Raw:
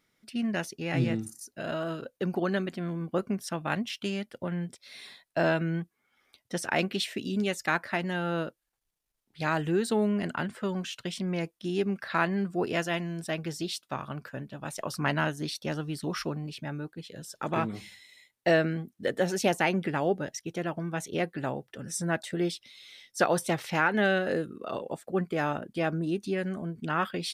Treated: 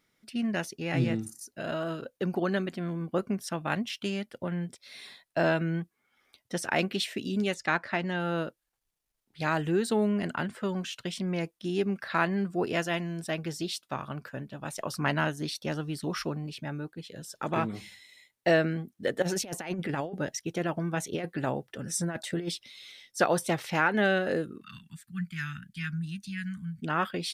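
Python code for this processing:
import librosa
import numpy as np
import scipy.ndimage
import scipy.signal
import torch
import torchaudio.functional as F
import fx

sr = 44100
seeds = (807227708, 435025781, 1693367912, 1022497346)

y = fx.lowpass(x, sr, hz=6200.0, slope=12, at=(7.54, 8.2))
y = fx.over_compress(y, sr, threshold_db=-30.0, ratio=-0.5, at=(19.22, 22.92))
y = fx.cheby1_bandstop(y, sr, low_hz=180.0, high_hz=1600.0, order=3, at=(24.61, 26.82))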